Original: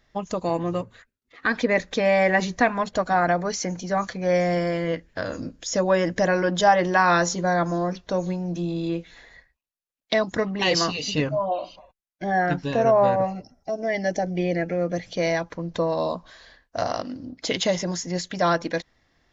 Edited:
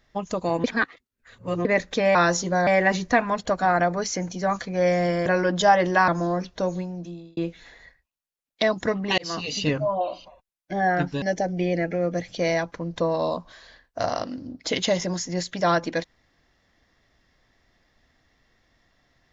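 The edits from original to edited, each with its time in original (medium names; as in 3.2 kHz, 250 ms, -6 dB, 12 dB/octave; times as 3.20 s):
0.64–1.65 s: reverse
4.74–6.25 s: delete
7.07–7.59 s: move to 2.15 s
8.11–8.88 s: fade out linear
10.69–11.01 s: fade in
12.73–14.00 s: delete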